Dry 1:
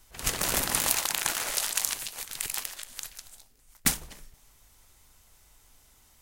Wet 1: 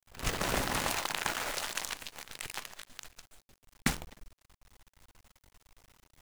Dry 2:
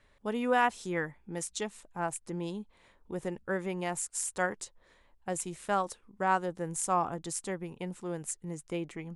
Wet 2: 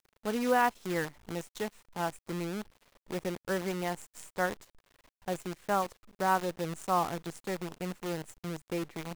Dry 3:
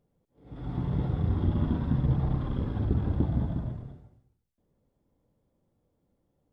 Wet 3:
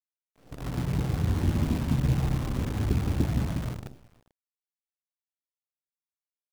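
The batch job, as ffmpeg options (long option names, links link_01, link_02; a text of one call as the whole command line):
ffmpeg -i in.wav -af "aemphasis=mode=reproduction:type=75fm,acrusher=bits=7:dc=4:mix=0:aa=0.000001" out.wav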